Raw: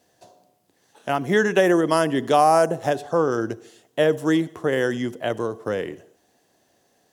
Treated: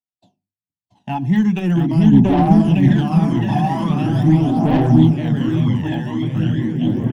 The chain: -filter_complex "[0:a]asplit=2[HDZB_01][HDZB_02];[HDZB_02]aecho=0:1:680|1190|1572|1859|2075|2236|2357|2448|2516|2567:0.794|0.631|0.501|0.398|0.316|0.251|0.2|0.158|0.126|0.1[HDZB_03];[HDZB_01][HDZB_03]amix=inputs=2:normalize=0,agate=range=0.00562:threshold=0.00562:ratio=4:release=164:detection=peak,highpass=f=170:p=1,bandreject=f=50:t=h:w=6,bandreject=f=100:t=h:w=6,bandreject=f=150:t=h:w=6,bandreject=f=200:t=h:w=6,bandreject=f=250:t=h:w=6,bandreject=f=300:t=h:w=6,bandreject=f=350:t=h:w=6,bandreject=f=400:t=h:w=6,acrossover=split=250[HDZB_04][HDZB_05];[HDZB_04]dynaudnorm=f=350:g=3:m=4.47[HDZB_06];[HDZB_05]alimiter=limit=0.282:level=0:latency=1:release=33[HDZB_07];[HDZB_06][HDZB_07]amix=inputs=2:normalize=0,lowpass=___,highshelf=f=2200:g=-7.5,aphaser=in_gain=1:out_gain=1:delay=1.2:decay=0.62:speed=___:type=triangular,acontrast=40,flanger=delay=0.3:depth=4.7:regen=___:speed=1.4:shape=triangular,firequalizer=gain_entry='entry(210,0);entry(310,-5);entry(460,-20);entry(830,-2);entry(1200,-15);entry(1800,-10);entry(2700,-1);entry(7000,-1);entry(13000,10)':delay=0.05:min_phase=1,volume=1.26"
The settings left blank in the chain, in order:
4500, 0.42, -35